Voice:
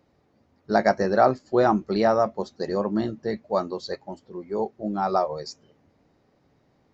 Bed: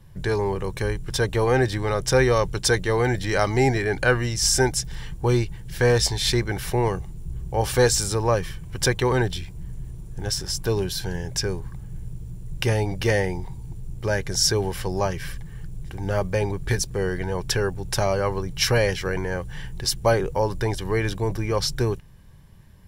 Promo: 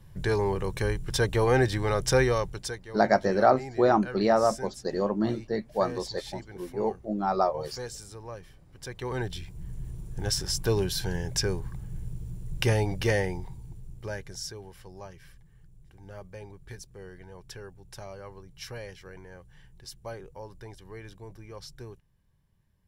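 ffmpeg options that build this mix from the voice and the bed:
ffmpeg -i stem1.wav -i stem2.wav -filter_complex "[0:a]adelay=2250,volume=-2dB[link_01];[1:a]volume=15.5dB,afade=type=out:start_time=2.06:duration=0.73:silence=0.133352,afade=type=in:start_time=8.86:duration=1.07:silence=0.125893,afade=type=out:start_time=12.66:duration=1.88:silence=0.125893[link_02];[link_01][link_02]amix=inputs=2:normalize=0" out.wav

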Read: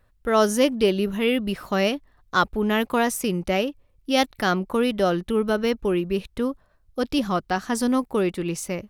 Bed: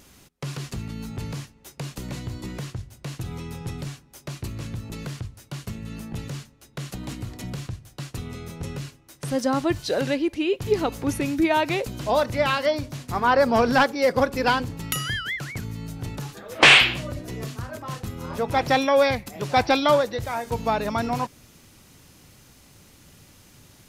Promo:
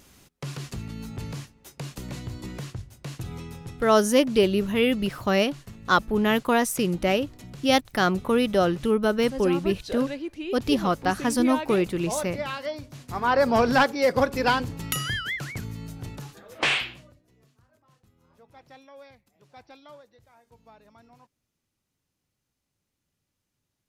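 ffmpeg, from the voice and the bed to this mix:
ffmpeg -i stem1.wav -i stem2.wav -filter_complex "[0:a]adelay=3550,volume=0dB[link_01];[1:a]volume=6dB,afade=type=out:start_time=3.37:duration=0.44:silence=0.446684,afade=type=in:start_time=12.89:duration=0.62:silence=0.375837,afade=type=out:start_time=15.45:duration=1.74:silence=0.0375837[link_02];[link_01][link_02]amix=inputs=2:normalize=0" out.wav

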